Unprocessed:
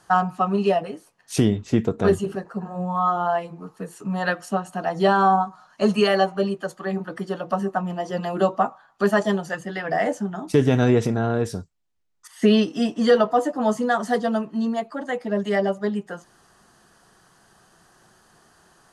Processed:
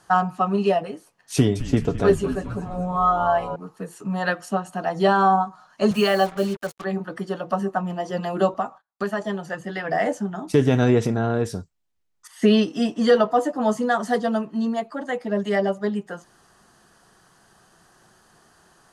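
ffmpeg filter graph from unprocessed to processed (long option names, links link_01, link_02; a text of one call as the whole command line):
ffmpeg -i in.wav -filter_complex "[0:a]asettb=1/sr,asplit=3[link_01][link_02][link_03];[link_01]atrim=end=1.344[link_04];[link_02]atrim=start=1.34:end=3.56,asetpts=PTS-STARTPTS,afade=type=in:duration=0.004:curve=qsin,afade=type=out:start_time=2.216:duration=0.004:curve=qsin,aecho=1:1:7.1:0.42,atrim=end_sample=97902,asplit=7[link_05][link_06][link_07][link_08][link_09][link_10][link_11];[link_06]adelay=213,afreqshift=-140,volume=-12dB[link_12];[link_07]adelay=426,afreqshift=-280,volume=-16.7dB[link_13];[link_08]adelay=639,afreqshift=-420,volume=-21.5dB[link_14];[link_09]adelay=852,afreqshift=-560,volume=-26.2dB[link_15];[link_10]adelay=1065,afreqshift=-700,volume=-30.9dB[link_16];[link_11]adelay=1278,afreqshift=-840,volume=-35.7dB[link_17];[link_05][link_12][link_13][link_14][link_15][link_16][link_17]amix=inputs=7:normalize=0,atrim=end_sample=97902[link_18];[link_03]atrim=start=3.556[link_19];[link_04][link_18]acrossfade=duration=0.004:curve1=hsin:curve2=qsin[link_20];[link_20][link_19]acrossfade=duration=0.004:curve1=qsin:curve2=hsin,asettb=1/sr,asplit=3[link_21][link_22][link_23];[link_21]atrim=end=5.914[link_24];[link_22]atrim=start=5.91:end=6.84,asetpts=PTS-STARTPTS,afade=type=in:duration=0.004:curve=qsin,afade=type=out:start_time=0.926:duration=0.004:curve=qsin,highpass=frequency=97:width=0.5412,highpass=frequency=97:width=1.3066,acrusher=bits=5:mix=0:aa=0.5,bandreject=frequency=460:width=7[link_25];[link_23]atrim=start=6.836[link_26];[link_24][link_25]acrossfade=duration=0.004:curve1=hsin:curve2=qsin[link_27];[link_27][link_26]acrossfade=duration=0.004:curve1=qsin:curve2=hsin,asettb=1/sr,asplit=3[link_28][link_29][link_30];[link_28]atrim=end=8.544[link_31];[link_29]atrim=start=8.54:end=9.64,asetpts=PTS-STARTPTS,afade=type=in:duration=0.004:curve=qsin,afade=type=out:start_time=1.096:duration=0.004:curve=qsin,agate=range=-33dB:threshold=-50dB:ratio=16:release=100:detection=peak,acrossover=split=1300|3200[link_32][link_33][link_34];[link_32]acompressor=threshold=-24dB:ratio=4[link_35];[link_33]acompressor=threshold=-34dB:ratio=4[link_36];[link_34]acompressor=threshold=-51dB:ratio=4[link_37];[link_35][link_36][link_37]amix=inputs=3:normalize=0[link_38];[link_30]atrim=start=9.636[link_39];[link_31][link_38]acrossfade=duration=0.004:curve1=hsin:curve2=qsin[link_40];[link_40][link_39]acrossfade=duration=0.004:curve1=qsin:curve2=hsin" out.wav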